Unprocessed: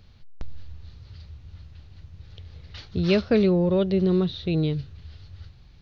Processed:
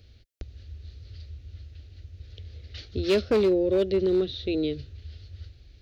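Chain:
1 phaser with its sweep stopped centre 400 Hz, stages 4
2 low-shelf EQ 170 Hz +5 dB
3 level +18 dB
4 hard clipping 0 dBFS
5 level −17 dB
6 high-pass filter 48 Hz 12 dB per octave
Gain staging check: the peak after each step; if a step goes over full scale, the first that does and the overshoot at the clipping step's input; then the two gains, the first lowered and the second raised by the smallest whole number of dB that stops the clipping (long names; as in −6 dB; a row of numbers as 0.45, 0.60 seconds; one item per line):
−11.5, −11.0, +7.0, 0.0, −17.0, −14.5 dBFS
step 3, 7.0 dB
step 3 +11 dB, step 5 −10 dB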